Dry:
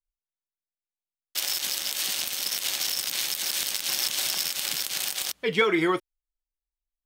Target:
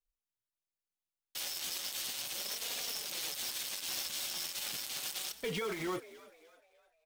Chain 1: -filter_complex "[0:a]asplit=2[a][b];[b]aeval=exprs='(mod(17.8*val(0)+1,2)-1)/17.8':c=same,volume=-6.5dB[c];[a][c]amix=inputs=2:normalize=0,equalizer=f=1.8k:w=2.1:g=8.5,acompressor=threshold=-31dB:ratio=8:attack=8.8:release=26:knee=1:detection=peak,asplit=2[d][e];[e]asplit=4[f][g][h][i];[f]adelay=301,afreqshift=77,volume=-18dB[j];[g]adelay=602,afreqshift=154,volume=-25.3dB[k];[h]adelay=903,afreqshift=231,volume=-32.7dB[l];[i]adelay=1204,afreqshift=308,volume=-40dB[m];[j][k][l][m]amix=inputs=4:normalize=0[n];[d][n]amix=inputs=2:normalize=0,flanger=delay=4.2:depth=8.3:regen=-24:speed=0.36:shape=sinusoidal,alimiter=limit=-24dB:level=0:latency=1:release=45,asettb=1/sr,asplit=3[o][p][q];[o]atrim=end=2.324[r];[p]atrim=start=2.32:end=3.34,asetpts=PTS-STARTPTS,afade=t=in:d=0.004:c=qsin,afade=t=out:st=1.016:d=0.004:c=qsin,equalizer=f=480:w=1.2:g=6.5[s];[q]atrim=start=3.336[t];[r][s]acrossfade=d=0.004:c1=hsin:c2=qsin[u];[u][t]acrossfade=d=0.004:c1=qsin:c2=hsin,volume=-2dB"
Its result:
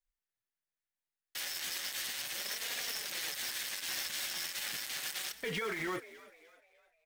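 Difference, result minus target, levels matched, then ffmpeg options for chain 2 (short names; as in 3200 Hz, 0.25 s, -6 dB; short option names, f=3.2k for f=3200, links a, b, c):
2000 Hz band +5.0 dB
-filter_complex "[0:a]asplit=2[a][b];[b]aeval=exprs='(mod(17.8*val(0)+1,2)-1)/17.8':c=same,volume=-6.5dB[c];[a][c]amix=inputs=2:normalize=0,equalizer=f=1.8k:w=2.1:g=-2,acompressor=threshold=-31dB:ratio=8:attack=8.8:release=26:knee=1:detection=peak,asplit=2[d][e];[e]asplit=4[f][g][h][i];[f]adelay=301,afreqshift=77,volume=-18dB[j];[g]adelay=602,afreqshift=154,volume=-25.3dB[k];[h]adelay=903,afreqshift=231,volume=-32.7dB[l];[i]adelay=1204,afreqshift=308,volume=-40dB[m];[j][k][l][m]amix=inputs=4:normalize=0[n];[d][n]amix=inputs=2:normalize=0,flanger=delay=4.2:depth=8.3:regen=-24:speed=0.36:shape=sinusoidal,alimiter=limit=-24dB:level=0:latency=1:release=45,asettb=1/sr,asplit=3[o][p][q];[o]atrim=end=2.324[r];[p]atrim=start=2.32:end=3.34,asetpts=PTS-STARTPTS,afade=t=in:d=0.004:c=qsin,afade=t=out:st=1.016:d=0.004:c=qsin,equalizer=f=480:w=1.2:g=6.5[s];[q]atrim=start=3.336[t];[r][s]acrossfade=d=0.004:c1=hsin:c2=qsin[u];[u][t]acrossfade=d=0.004:c1=qsin:c2=hsin,volume=-2dB"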